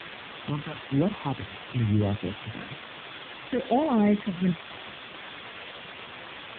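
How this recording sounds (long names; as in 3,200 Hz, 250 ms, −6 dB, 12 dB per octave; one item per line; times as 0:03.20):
sample-and-hold tremolo
phaser sweep stages 4, 1.1 Hz, lowest notch 450–2,500 Hz
a quantiser's noise floor 6 bits, dither triangular
AMR narrowband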